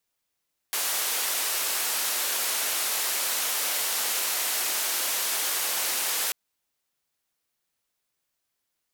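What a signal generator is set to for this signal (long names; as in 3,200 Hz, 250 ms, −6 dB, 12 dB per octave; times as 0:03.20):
band-limited noise 470–16,000 Hz, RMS −27.5 dBFS 5.59 s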